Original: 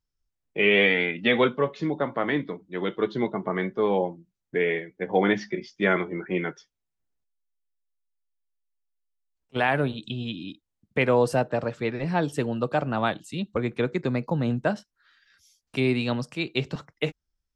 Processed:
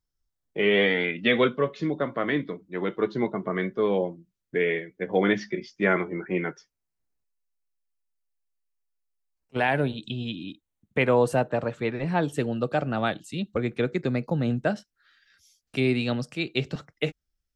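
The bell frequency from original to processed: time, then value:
bell -9.5 dB 0.3 oct
2500 Hz
from 1.04 s 850 Hz
from 2.67 s 3300 Hz
from 3.35 s 840 Hz
from 5.72 s 3400 Hz
from 9.61 s 1200 Hz
from 10.35 s 5100 Hz
from 12.37 s 990 Hz

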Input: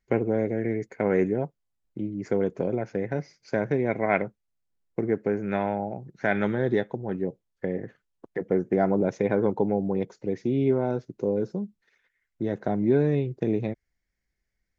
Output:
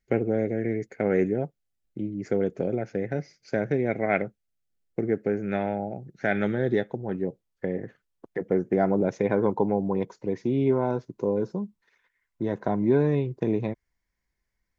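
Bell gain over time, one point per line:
bell 1000 Hz 0.3 oct
6.66 s -12 dB
7.1 s -0.5 dB
9.09 s -0.5 dB
9.67 s +11 dB

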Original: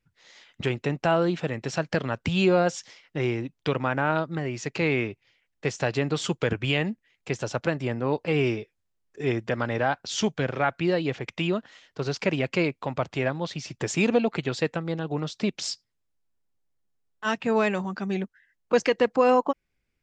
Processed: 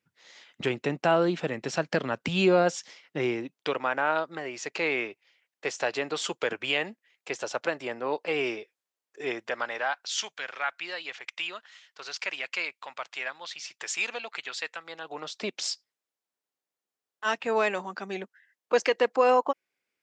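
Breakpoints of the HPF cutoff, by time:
3.18 s 200 Hz
3.82 s 470 Hz
9.22 s 470 Hz
10.21 s 1300 Hz
14.76 s 1300 Hz
15.47 s 420 Hz

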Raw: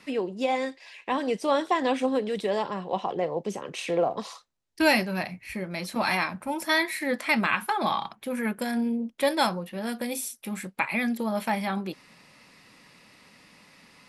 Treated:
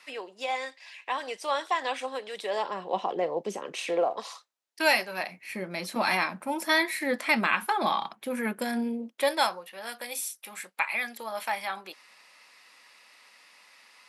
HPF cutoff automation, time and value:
2.31 s 810 Hz
2.94 s 270 Hz
3.69 s 270 Hz
4.31 s 570 Hz
5.09 s 570 Hz
5.6 s 220 Hz
8.77 s 220 Hz
9.67 s 770 Hz

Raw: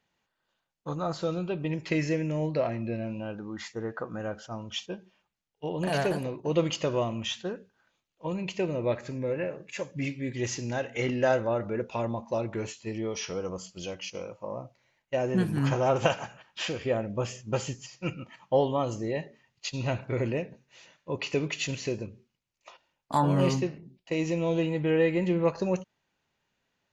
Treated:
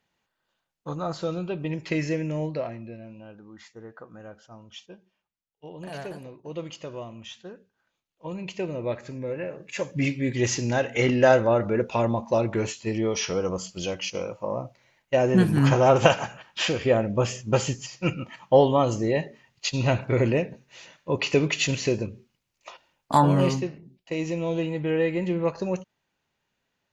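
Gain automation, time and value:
2.4 s +1 dB
2.98 s -9 dB
7.28 s -9 dB
8.5 s -1 dB
9.44 s -1 dB
9.92 s +7 dB
23.14 s +7 dB
23.61 s 0 dB

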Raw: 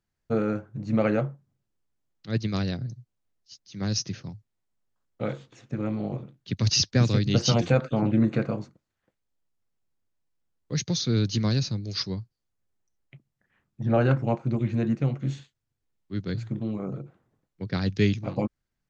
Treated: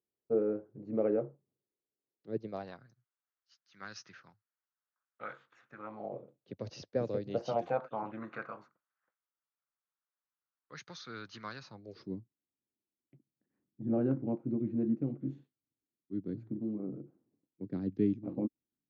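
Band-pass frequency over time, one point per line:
band-pass, Q 2.9
2.38 s 410 Hz
2.86 s 1400 Hz
5.75 s 1400 Hz
6.17 s 530 Hz
7.19 s 530 Hz
8.38 s 1300 Hz
11.6 s 1300 Hz
12.08 s 290 Hz

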